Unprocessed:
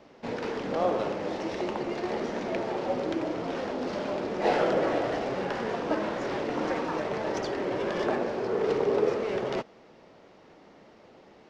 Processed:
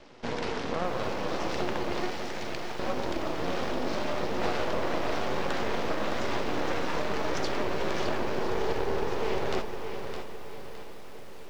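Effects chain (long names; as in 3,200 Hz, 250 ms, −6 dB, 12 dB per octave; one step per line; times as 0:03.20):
convolution reverb RT60 1.1 s, pre-delay 8 ms, DRR 11 dB
downward compressor, threshold −28 dBFS, peak gain reduction 9 dB
0:02.10–0:02.79: parametric band 350 Hz −13 dB 2.4 octaves
half-wave rectification
low-pass filter 5,900 Hz 12 dB per octave
high-shelf EQ 4,100 Hz +10 dB
feedback delay with all-pass diffusion 620 ms, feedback 60%, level −14 dB
feedback echo at a low word length 613 ms, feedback 35%, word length 9 bits, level −8 dB
level +4.5 dB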